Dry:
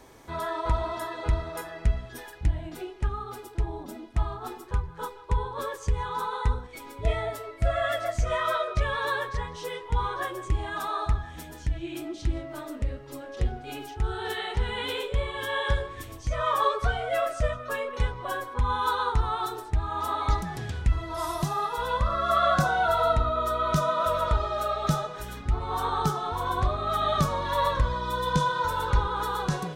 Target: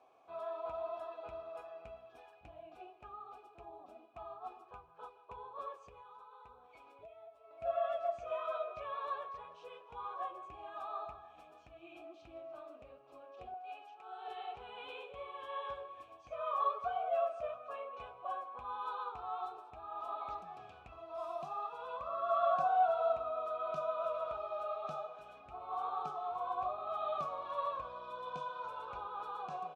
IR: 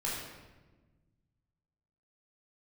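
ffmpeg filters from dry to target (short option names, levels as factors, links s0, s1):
-filter_complex "[0:a]asplit=3[s0][s1][s2];[s0]bandpass=f=730:t=q:w=8,volume=1[s3];[s1]bandpass=f=1090:t=q:w=8,volume=0.501[s4];[s2]bandpass=f=2440:t=q:w=8,volume=0.355[s5];[s3][s4][s5]amix=inputs=3:normalize=0,aecho=1:1:297|594|891|1188:0.106|0.0551|0.0286|0.0149,asettb=1/sr,asplit=3[s6][s7][s8];[s6]atrim=end=5.804[s9];[s7]atrim=start=5.8:end=7.51,asetpts=PTS-STARTPTS,afade=t=in:d=0.004:c=qsin,afade=t=out:st=1.706:d=0.004:c=qsin,acompressor=threshold=0.00282:ratio=8[s10];[s8]atrim=start=7.506[s11];[s9][s10]acrossfade=d=0.004:c1=hsin:c2=qsin[s12];[s12][s11]acrossfade=d=0.004:c1=qsin:c2=hsin,asettb=1/sr,asplit=3[s13][s14][s15];[s13]atrim=end=13.544[s16];[s14]atrim=start=13.54:end=14.28,asetpts=PTS-STARTPTS,afade=t=in:d=0.004:c=qsin,afade=t=out:st=0.736:d=0.004:c=qsin,highpass=510[s17];[s15]atrim=start=14.276[s18];[s16][s17]acrossfade=d=0.004:c1=hsin:c2=qsin[s19];[s19][s18]acrossfade=d=0.004:c1=qsin:c2=hsin,volume=0.794"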